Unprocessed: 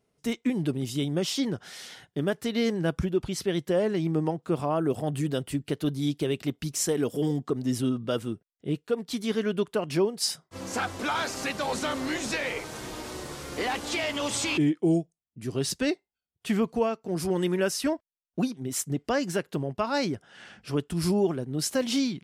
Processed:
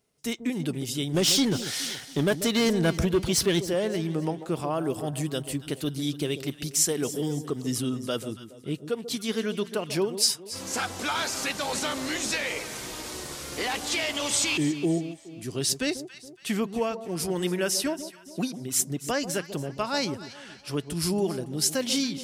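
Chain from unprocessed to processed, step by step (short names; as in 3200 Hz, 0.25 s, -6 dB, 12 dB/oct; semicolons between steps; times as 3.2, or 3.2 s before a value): high shelf 2600 Hz +9.5 dB; 1.14–3.62 sample leveller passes 2; echo with dull and thin repeats by turns 0.14 s, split 910 Hz, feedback 62%, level -11 dB; gain -2.5 dB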